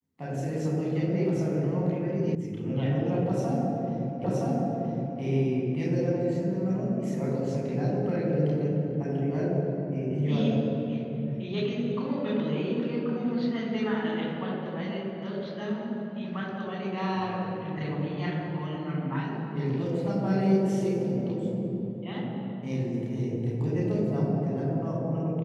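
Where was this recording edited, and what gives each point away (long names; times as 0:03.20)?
0:02.35: cut off before it has died away
0:04.24: the same again, the last 0.97 s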